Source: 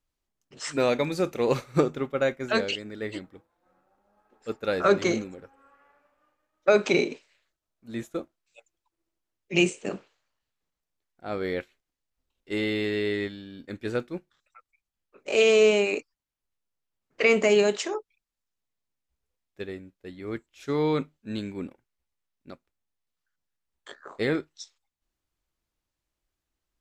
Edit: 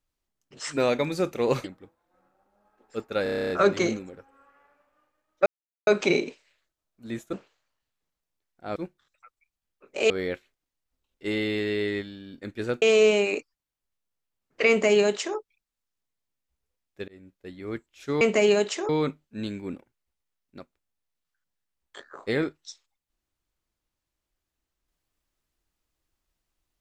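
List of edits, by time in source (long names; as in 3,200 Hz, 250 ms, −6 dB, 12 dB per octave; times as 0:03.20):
0:01.64–0:03.16: remove
0:04.75: stutter 0.03 s, 10 plays
0:06.71: splice in silence 0.41 s
0:08.17–0:09.93: remove
0:14.08–0:15.42: move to 0:11.36
0:17.29–0:17.97: duplicate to 0:20.81
0:19.68–0:19.93: fade in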